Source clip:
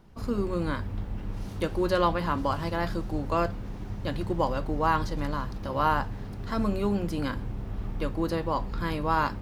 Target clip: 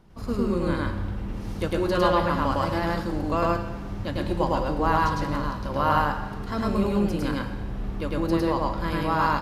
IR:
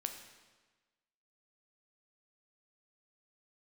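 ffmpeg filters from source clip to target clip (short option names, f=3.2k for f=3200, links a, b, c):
-filter_complex "[0:a]asplit=2[a][b];[1:a]atrim=start_sample=2205,adelay=105[c];[b][c]afir=irnorm=-1:irlink=0,volume=2dB[d];[a][d]amix=inputs=2:normalize=0,aresample=32000,aresample=44100"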